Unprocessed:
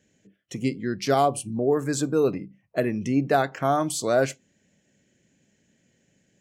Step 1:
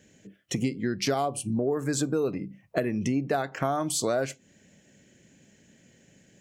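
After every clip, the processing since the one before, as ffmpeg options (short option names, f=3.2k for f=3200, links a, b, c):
-af "acompressor=threshold=-32dB:ratio=6,volume=7.5dB"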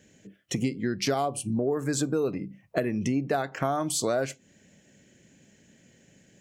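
-af anull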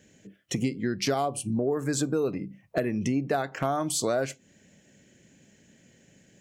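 -af "asoftclip=type=hard:threshold=-15dB"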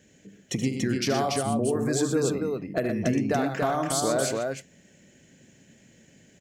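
-af "aecho=1:1:75.8|119.5|285.7:0.316|0.398|0.708"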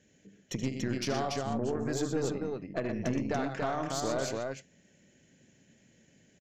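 -af "aresample=16000,aresample=44100,aeval=exprs='0.266*(cos(1*acos(clip(val(0)/0.266,-1,1)))-cos(1*PI/2))+0.0188*(cos(6*acos(clip(val(0)/0.266,-1,1)))-cos(6*PI/2))':c=same,volume=-7dB"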